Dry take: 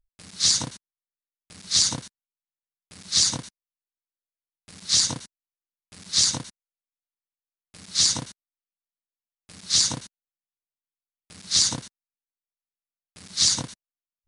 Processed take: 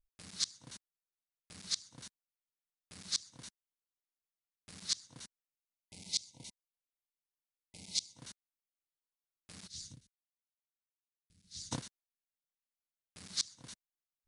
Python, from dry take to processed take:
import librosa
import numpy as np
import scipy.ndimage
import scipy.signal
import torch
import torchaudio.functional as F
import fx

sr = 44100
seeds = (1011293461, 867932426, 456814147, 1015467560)

y = fx.spec_box(x, sr, start_s=5.46, length_s=2.71, low_hz=970.0, high_hz=2000.0, gain_db=-21)
y = fx.tone_stack(y, sr, knobs='10-0-1', at=(9.66, 11.71), fade=0.02)
y = fx.gate_flip(y, sr, shuts_db=-12.0, range_db=-29)
y = y * librosa.db_to_amplitude(-6.5)